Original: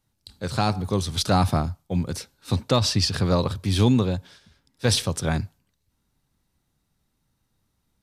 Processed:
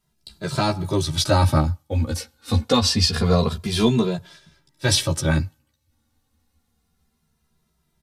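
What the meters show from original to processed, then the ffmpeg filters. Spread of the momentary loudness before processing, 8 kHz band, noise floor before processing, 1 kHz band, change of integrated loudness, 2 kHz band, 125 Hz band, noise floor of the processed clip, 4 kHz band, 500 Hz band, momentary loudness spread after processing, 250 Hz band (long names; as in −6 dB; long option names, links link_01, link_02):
10 LU, +3.5 dB, −74 dBFS, +1.5 dB, +2.5 dB, +4.0 dB, +2.0 dB, −71 dBFS, +3.5 dB, +3.0 dB, 10 LU, +2.0 dB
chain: -filter_complex "[0:a]asplit=2[link_01][link_02];[link_02]adelay=13,volume=-4.5dB[link_03];[link_01][link_03]amix=inputs=2:normalize=0,asplit=2[link_04][link_05];[link_05]adelay=2.5,afreqshift=-0.26[link_06];[link_04][link_06]amix=inputs=2:normalize=1,volume=5dB"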